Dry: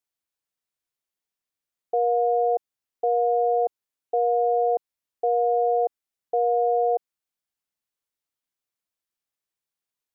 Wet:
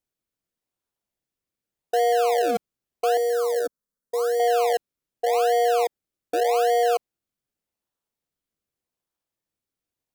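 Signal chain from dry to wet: in parallel at -5 dB: decimation with a swept rate 33×, swing 100% 0.85 Hz; 3.17–4.40 s: on the sum: static phaser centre 510 Hz, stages 8; trim -1.5 dB

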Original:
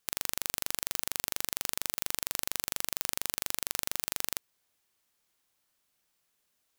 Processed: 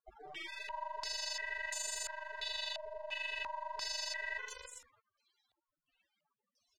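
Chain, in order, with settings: bouncing-ball echo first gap 150 ms, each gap 0.9×, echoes 5; loudest bins only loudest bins 32; step-sequenced low-pass 2.9 Hz 700–7500 Hz; trim +5.5 dB

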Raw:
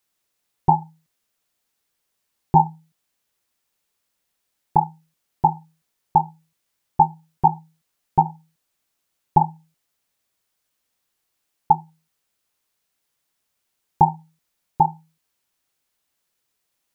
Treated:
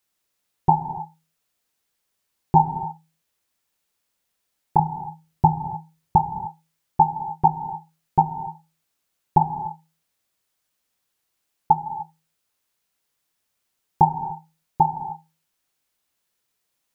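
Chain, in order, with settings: 4.79–6.16 s: peaking EQ 84 Hz +12 dB 2.3 oct; gated-style reverb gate 320 ms flat, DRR 8.5 dB; trim -1 dB

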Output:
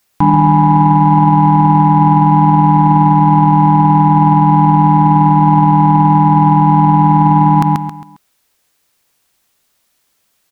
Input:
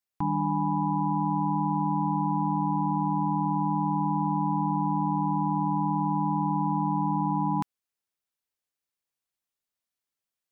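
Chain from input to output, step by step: in parallel at -9.5 dB: saturation -29 dBFS, distortion -10 dB; on the sum: feedback delay 135 ms, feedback 35%, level -10.5 dB; loudness maximiser +25 dB; trim -1 dB

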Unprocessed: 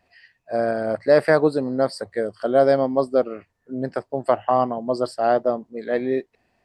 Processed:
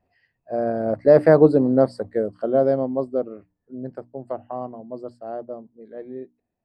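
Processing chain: Doppler pass-by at 1.53 s, 5 m/s, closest 2.8 m; tilt shelf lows +9.5 dB, about 1.1 kHz; hum notches 60/120/180/240/300 Hz; trim -1 dB

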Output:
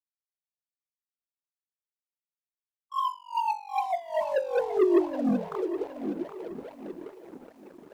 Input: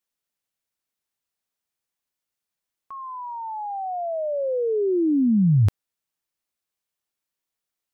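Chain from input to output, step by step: formants replaced by sine waves; distance through air 370 m; thinning echo 703 ms, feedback 58%, high-pass 220 Hz, level -21 dB; gain riding within 5 dB 2 s; echo that smears into a reverb 1136 ms, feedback 52%, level -16 dB; wah-wah 2.4 Hz 230–1200 Hz, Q 6; band-stop 720 Hz, Q 12; waveshaping leveller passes 3; dynamic bell 360 Hz, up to +6 dB, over -38 dBFS, Q 3.3; bit-crushed delay 771 ms, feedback 35%, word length 9-bit, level -11 dB; trim -3.5 dB

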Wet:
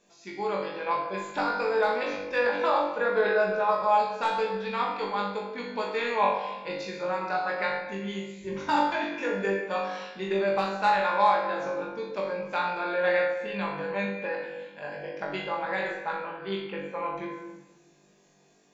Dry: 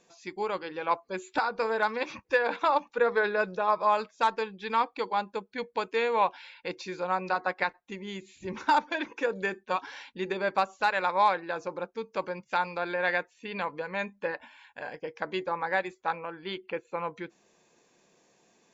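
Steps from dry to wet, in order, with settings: on a send: flutter echo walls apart 3.5 m, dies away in 0.44 s; on the sum: simulated room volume 730 m³, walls mixed, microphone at 1.3 m; trim -4 dB

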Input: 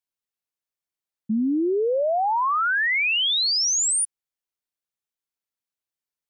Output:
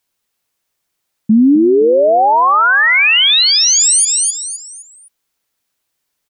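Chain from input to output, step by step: 2.95–3.43 s: treble shelf 5.8 kHz +11 dB; feedback delay 258 ms, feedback 35%, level -11 dB; loudness maximiser +22.5 dB; trim -4 dB

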